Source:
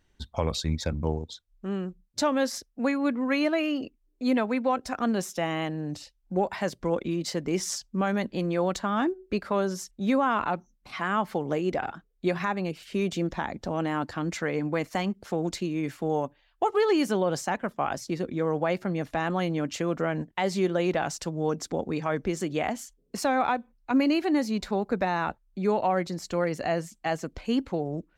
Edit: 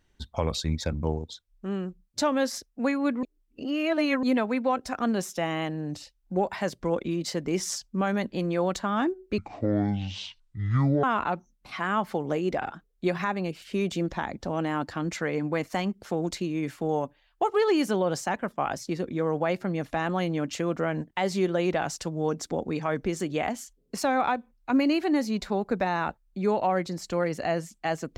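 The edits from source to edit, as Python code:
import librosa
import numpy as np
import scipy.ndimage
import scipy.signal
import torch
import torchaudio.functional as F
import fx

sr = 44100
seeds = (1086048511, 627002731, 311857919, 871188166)

y = fx.edit(x, sr, fx.reverse_span(start_s=3.23, length_s=1.0),
    fx.speed_span(start_s=9.38, length_s=0.86, speed=0.52), tone=tone)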